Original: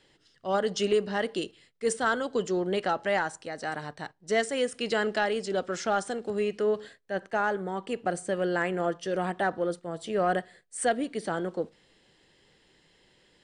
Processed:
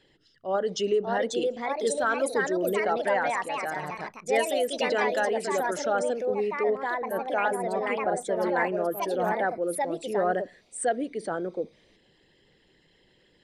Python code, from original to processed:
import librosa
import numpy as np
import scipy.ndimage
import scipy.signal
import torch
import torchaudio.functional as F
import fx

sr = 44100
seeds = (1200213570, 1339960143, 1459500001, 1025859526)

y = fx.envelope_sharpen(x, sr, power=1.5)
y = fx.echo_pitch(y, sr, ms=664, semitones=3, count=2, db_per_echo=-3.0)